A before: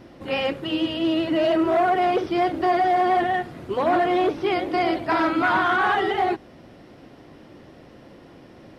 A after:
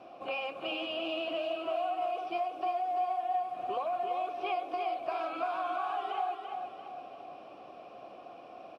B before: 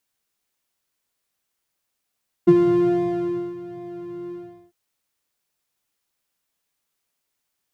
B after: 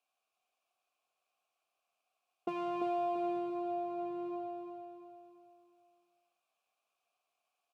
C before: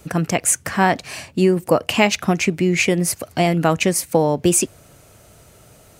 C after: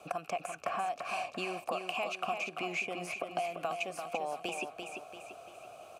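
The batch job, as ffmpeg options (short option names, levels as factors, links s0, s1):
-filter_complex "[0:a]highshelf=f=6200:g=11.5,acrossover=split=1300|2800[s0][s1][s2];[s0]acompressor=threshold=0.0501:ratio=4[s3];[s1]acompressor=threshold=0.0398:ratio=4[s4];[s2]acompressor=threshold=0.0316:ratio=4[s5];[s3][s4][s5]amix=inputs=3:normalize=0,asplit=3[s6][s7][s8];[s6]bandpass=f=730:t=q:w=8,volume=1[s9];[s7]bandpass=f=1090:t=q:w=8,volume=0.501[s10];[s8]bandpass=f=2440:t=q:w=8,volume=0.355[s11];[s9][s10][s11]amix=inputs=3:normalize=0,acrossover=split=7600[s12][s13];[s12]acompressor=threshold=0.00794:ratio=6[s14];[s14][s13]amix=inputs=2:normalize=0,aecho=1:1:341|682|1023|1364|1705:0.501|0.221|0.097|0.0427|0.0188,volume=2.82"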